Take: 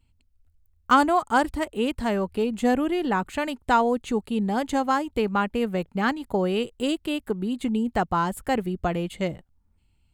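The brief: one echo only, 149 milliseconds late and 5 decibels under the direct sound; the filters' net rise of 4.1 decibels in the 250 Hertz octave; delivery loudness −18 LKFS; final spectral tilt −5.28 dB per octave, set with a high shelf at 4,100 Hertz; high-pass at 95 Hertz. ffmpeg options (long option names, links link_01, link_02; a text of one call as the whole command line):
ffmpeg -i in.wav -af "highpass=95,equalizer=frequency=250:width_type=o:gain=5,highshelf=frequency=4100:gain=8.5,aecho=1:1:149:0.562,volume=3.5dB" out.wav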